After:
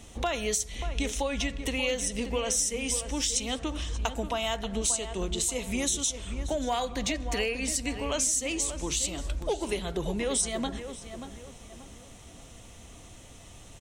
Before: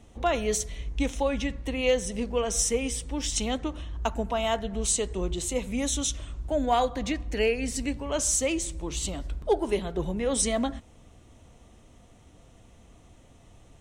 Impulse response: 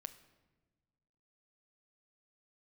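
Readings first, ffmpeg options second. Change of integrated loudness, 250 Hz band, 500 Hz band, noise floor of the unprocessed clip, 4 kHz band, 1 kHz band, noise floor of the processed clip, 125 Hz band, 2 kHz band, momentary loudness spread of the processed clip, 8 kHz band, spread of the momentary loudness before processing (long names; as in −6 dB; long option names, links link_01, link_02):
−1.0 dB, −3.0 dB, −4.5 dB, −55 dBFS, +2.0 dB, −4.0 dB, −49 dBFS, −1.5 dB, +0.5 dB, 21 LU, +1.0 dB, 7 LU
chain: -filter_complex "[0:a]highshelf=frequency=2100:gain=11,acompressor=threshold=-31dB:ratio=4,asplit=2[link_01][link_02];[link_02]adelay=584,lowpass=frequency=2400:poles=1,volume=-9.5dB,asplit=2[link_03][link_04];[link_04]adelay=584,lowpass=frequency=2400:poles=1,volume=0.38,asplit=2[link_05][link_06];[link_06]adelay=584,lowpass=frequency=2400:poles=1,volume=0.38,asplit=2[link_07][link_08];[link_08]adelay=584,lowpass=frequency=2400:poles=1,volume=0.38[link_09];[link_03][link_05][link_07][link_09]amix=inputs=4:normalize=0[link_10];[link_01][link_10]amix=inputs=2:normalize=0,volume=3dB"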